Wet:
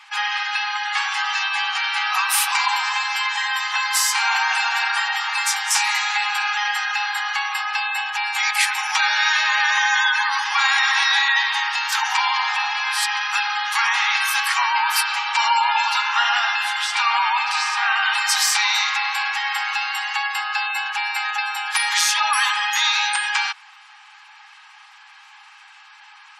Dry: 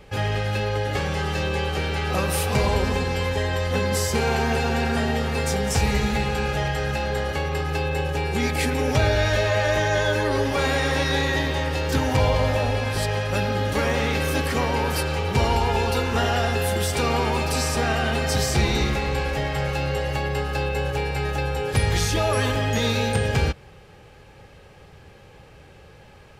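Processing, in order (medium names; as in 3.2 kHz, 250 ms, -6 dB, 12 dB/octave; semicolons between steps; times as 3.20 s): steep high-pass 850 Hz 72 dB/octave; spectral gate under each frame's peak -25 dB strong; 15.91–18.01 s: low-pass 5.7 kHz -> 3.4 kHz 12 dB/octave; trim +9 dB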